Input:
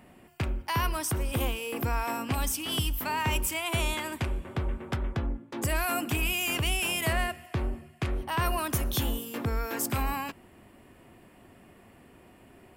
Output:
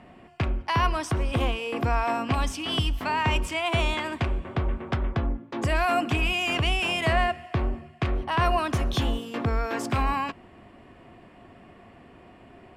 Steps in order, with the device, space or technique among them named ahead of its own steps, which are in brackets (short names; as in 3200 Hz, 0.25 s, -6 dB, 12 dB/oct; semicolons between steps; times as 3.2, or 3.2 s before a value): inside a cardboard box (LPF 4500 Hz 12 dB/oct; small resonant body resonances 700/1100 Hz, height 6 dB); gain +4 dB